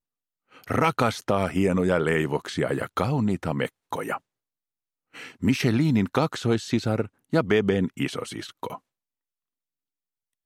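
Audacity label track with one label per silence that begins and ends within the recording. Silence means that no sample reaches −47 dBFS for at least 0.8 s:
4.180000	5.140000	silence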